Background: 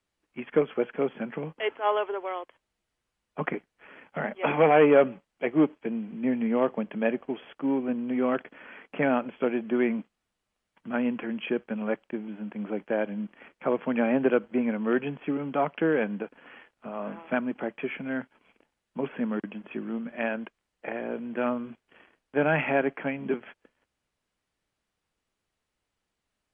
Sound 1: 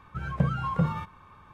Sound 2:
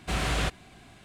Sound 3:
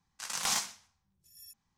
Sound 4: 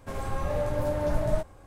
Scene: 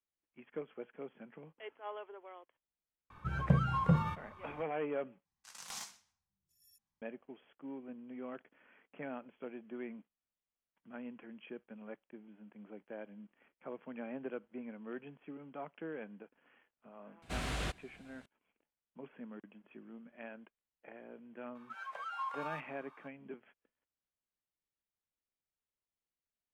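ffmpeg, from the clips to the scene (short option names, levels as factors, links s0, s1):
-filter_complex "[1:a]asplit=2[s0][s1];[0:a]volume=0.112[s2];[s1]highpass=f=740:w=0.5412,highpass=f=740:w=1.3066[s3];[s2]asplit=2[s4][s5];[s4]atrim=end=5.254[s6];[3:a]atrim=end=1.77,asetpts=PTS-STARTPTS,volume=0.188[s7];[s5]atrim=start=7.016[s8];[s0]atrim=end=1.53,asetpts=PTS-STARTPTS,volume=0.708,afade=t=in:d=0.004:c=hsin,afade=t=out:st=1.526:d=0.004:c=hsin,adelay=3100[s9];[2:a]atrim=end=1.04,asetpts=PTS-STARTPTS,volume=0.316,afade=t=in:d=0.004:c=hsin,afade=t=out:st=1.036:d=0.004:c=hsin,adelay=17220[s10];[s3]atrim=end=1.53,asetpts=PTS-STARTPTS,volume=0.473,afade=t=in:d=0.004:c=hsin,afade=t=out:st=1.526:d=0.004:c=hsin,adelay=21550[s11];[s6][s7]acrossfade=d=0.004:c1=hsin:c2=hsin[s12];[s12][s8]acrossfade=d=0.004:c1=hsin:c2=hsin[s13];[s13][s9][s10][s11]amix=inputs=4:normalize=0"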